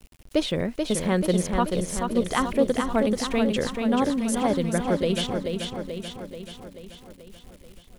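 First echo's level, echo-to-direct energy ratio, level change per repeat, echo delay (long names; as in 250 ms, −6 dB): −5.0 dB, −3.0 dB, −4.5 dB, 434 ms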